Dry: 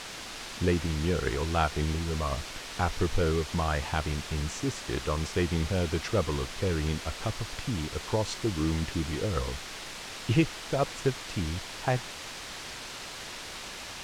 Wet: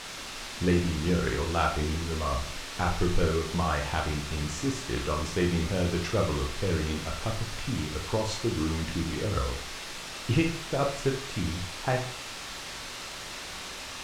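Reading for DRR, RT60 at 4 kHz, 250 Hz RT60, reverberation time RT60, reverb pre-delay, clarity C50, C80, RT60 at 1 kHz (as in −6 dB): 1.0 dB, 0.35 s, 0.45 s, 0.45 s, 17 ms, 7.5 dB, 13.0 dB, 0.45 s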